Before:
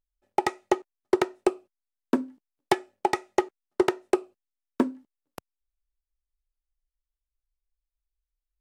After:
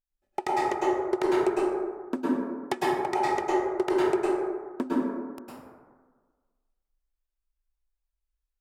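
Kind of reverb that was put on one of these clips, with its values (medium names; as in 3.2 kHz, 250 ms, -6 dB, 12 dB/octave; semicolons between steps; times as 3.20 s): plate-style reverb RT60 1.5 s, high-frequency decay 0.35×, pre-delay 95 ms, DRR -7.5 dB; trim -7.5 dB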